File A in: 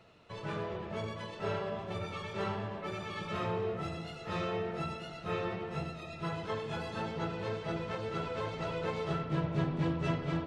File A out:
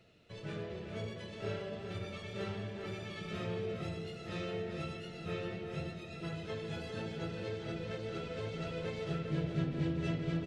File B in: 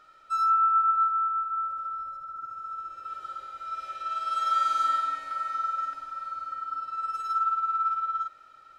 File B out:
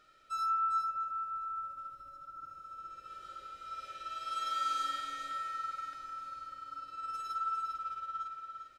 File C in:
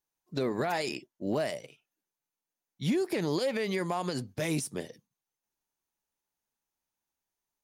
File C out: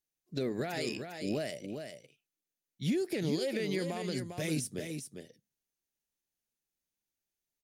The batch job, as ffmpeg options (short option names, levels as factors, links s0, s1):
-af "equalizer=f=1000:w=1.7:g=-14,aecho=1:1:401:0.447,volume=0.794"